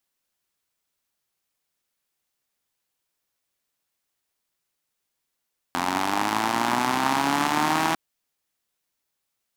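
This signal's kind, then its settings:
pulse-train model of a four-cylinder engine, changing speed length 2.20 s, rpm 2,600, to 4,900, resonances 280/850 Hz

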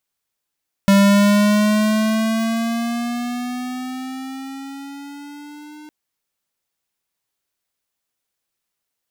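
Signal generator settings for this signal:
pitch glide with a swell square, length 5.01 s, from 197 Hz, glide +7.5 semitones, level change −28 dB, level −11 dB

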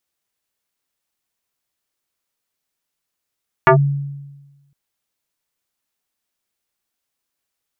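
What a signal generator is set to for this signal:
two-operator FM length 1.06 s, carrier 141 Hz, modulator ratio 3.71, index 3.4, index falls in 0.10 s linear, decay 1.21 s, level −5 dB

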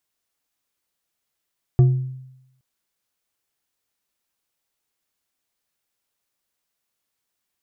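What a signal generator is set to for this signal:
struck glass bar, length 0.82 s, lowest mode 130 Hz, decay 0.87 s, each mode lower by 12 dB, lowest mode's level −8 dB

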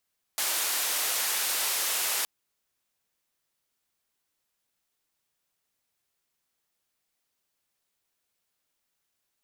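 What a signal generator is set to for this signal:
band-limited noise 540–15,000 Hz, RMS −28.5 dBFS 1.87 s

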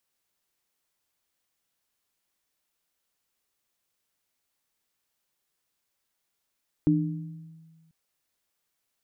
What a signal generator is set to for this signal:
inharmonic partials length 1.04 s, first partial 162 Hz, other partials 300 Hz, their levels 4.5 dB, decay 1.63 s, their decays 0.78 s, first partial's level −21.5 dB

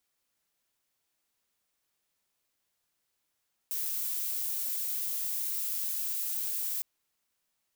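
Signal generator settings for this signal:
noise violet, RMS −33 dBFS 3.11 s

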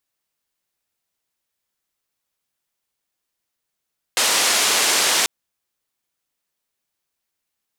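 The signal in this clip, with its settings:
band-limited noise 350–8,100 Hz, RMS −18 dBFS 1.09 s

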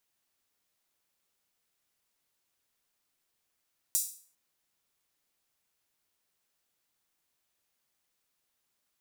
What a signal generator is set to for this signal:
open synth hi-hat length 0.40 s, high-pass 7,200 Hz, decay 0.45 s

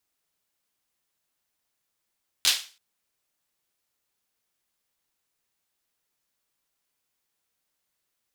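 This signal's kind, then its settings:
synth clap length 0.33 s, bursts 3, apart 11 ms, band 3,800 Hz, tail 0.36 s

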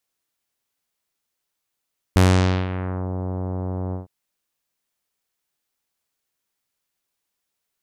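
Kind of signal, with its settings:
subtractive voice saw F#2 24 dB per octave, low-pass 940 Hz, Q 0.81, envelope 4 octaves, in 0.92 s, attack 1.2 ms, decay 0.51 s, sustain −13.5 dB, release 0.14 s, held 1.77 s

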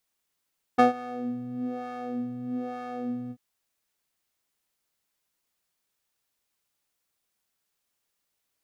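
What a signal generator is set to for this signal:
subtractive patch with filter wobble B3, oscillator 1 square, oscillator 2 triangle, interval +12 semitones, oscillator 2 level −4.5 dB, noise −23 dB, filter bandpass, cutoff 170 Hz, Q 1.4, filter envelope 2.5 octaves, filter decay 0.09 s, attack 16 ms, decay 0.13 s, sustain −21 dB, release 0.06 s, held 2.53 s, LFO 1.1 Hz, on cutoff 1.5 octaves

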